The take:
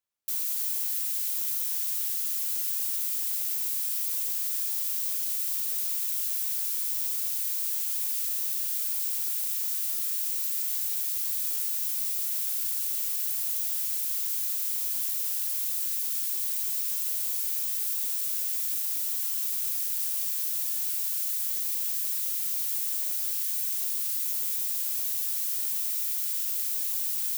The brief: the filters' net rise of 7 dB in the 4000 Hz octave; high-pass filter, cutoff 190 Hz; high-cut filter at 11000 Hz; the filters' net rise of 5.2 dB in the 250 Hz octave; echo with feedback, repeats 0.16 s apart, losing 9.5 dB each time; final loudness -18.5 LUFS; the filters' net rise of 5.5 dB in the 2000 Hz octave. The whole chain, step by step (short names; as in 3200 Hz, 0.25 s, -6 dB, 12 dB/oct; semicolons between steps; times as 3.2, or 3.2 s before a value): HPF 190 Hz; LPF 11000 Hz; bell 250 Hz +8 dB; bell 2000 Hz +4 dB; bell 4000 Hz +8 dB; feedback echo 0.16 s, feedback 33%, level -9.5 dB; gain +13.5 dB